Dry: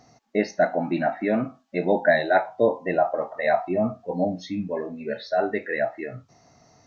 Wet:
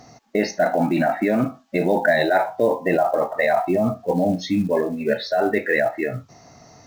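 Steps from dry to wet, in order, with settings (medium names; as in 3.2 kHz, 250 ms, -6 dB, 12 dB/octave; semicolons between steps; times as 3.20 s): in parallel at +1 dB: compressor with a negative ratio -26 dBFS, ratio -0.5; on the sum: short-mantissa float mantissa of 4-bit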